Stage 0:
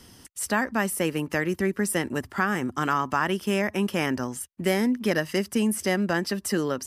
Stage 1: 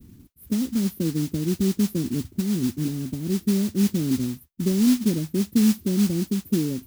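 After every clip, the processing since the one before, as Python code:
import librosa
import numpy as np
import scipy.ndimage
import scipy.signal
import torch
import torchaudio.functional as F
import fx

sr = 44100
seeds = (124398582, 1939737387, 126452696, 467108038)

y = scipy.signal.sosfilt(scipy.signal.cheby2(4, 80, [1400.0, 5500.0], 'bandstop', fs=sr, output='sos'), x)
y = fx.mod_noise(y, sr, seeds[0], snr_db=17)
y = fx.dynamic_eq(y, sr, hz=5000.0, q=0.88, threshold_db=-55.0, ratio=4.0, max_db=5)
y = y * 10.0 ** (6.5 / 20.0)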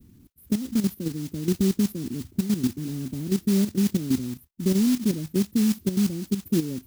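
y = fx.level_steps(x, sr, step_db=11)
y = y * 10.0 ** (2.5 / 20.0)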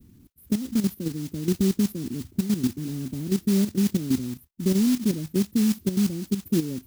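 y = x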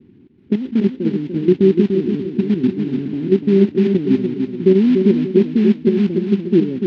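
y = fx.cabinet(x, sr, low_hz=150.0, low_slope=12, high_hz=3000.0, hz=(380.0, 610.0, 1200.0), db=(10, -5, -7))
y = fx.echo_feedback(y, sr, ms=293, feedback_pct=36, wet_db=-5.5)
y = y * 10.0 ** (7.0 / 20.0)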